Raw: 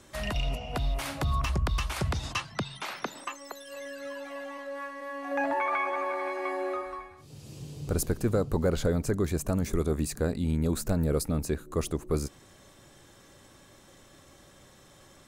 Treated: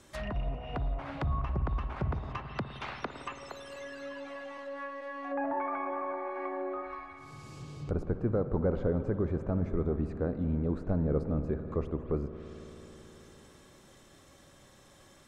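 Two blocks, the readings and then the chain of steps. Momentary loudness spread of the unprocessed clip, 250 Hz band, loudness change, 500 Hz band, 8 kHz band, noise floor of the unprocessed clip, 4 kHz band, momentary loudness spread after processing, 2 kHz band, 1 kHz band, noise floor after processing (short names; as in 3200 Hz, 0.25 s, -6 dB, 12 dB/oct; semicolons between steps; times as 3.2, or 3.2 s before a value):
12 LU, -2.5 dB, -3.5 dB, -3.0 dB, under -20 dB, -56 dBFS, -12.0 dB, 15 LU, -7.5 dB, -4.0 dB, -58 dBFS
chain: spring tank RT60 4 s, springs 54 ms, chirp 25 ms, DRR 8.5 dB; treble ducked by the level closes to 1200 Hz, closed at -28 dBFS; gain -3 dB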